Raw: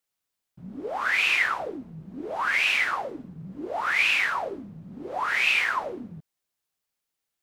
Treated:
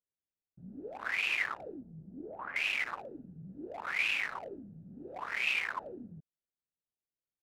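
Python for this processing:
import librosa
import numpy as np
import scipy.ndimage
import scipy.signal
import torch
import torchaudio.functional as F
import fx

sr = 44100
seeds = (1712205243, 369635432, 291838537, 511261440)

y = fx.wiener(x, sr, points=41)
y = fx.lowpass(y, sr, hz=1200.0, slope=12, at=(1.81, 2.56))
y = y * librosa.db_to_amplitude(-7.5)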